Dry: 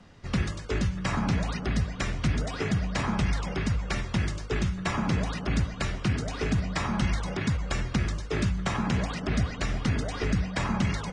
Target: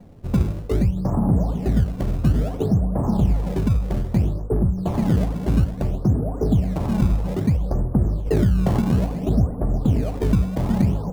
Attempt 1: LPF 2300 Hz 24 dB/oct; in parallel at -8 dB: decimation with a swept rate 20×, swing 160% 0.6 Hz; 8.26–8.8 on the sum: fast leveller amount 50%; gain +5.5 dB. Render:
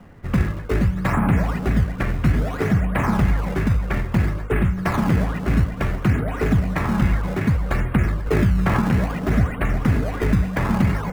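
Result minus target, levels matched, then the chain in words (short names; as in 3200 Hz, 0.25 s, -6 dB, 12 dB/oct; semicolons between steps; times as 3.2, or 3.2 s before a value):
2000 Hz band +14.5 dB
LPF 780 Hz 24 dB/oct; in parallel at -8 dB: decimation with a swept rate 20×, swing 160% 0.6 Hz; 8.26–8.8 on the sum: fast leveller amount 50%; gain +5.5 dB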